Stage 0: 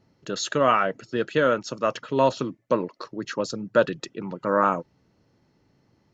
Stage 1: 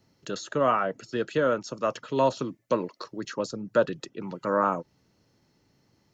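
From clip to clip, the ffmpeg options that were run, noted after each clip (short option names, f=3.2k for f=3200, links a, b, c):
-filter_complex "[0:a]highshelf=f=3.6k:g=11,acrossover=split=330|970|1300[a][b][c][d];[d]acompressor=threshold=-37dB:ratio=6[e];[a][b][c][e]amix=inputs=4:normalize=0,volume=-3dB"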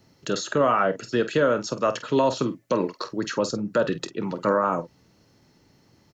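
-filter_complex "[0:a]alimiter=limit=-18.5dB:level=0:latency=1:release=73,asplit=2[a][b];[b]aecho=0:1:25|48:0.126|0.237[c];[a][c]amix=inputs=2:normalize=0,volume=7dB"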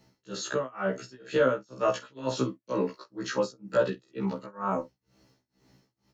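-af "tremolo=f=2.1:d=0.98,afftfilt=real='re*1.73*eq(mod(b,3),0)':imag='im*1.73*eq(mod(b,3),0)':win_size=2048:overlap=0.75"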